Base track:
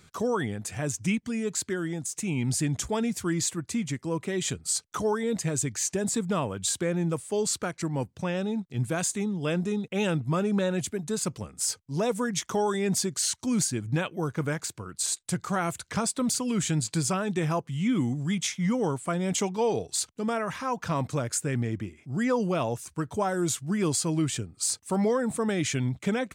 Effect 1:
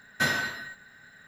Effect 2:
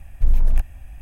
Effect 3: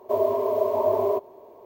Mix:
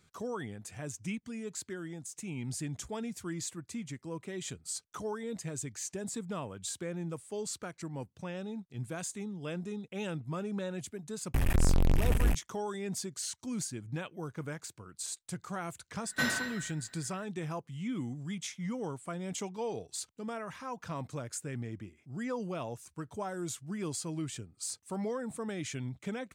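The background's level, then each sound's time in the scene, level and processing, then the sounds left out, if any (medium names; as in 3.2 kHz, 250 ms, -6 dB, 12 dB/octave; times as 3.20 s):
base track -10.5 dB
11.34 s: add 2 -7.5 dB + fuzz box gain 44 dB, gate -43 dBFS
15.98 s: add 1 -5.5 dB
not used: 3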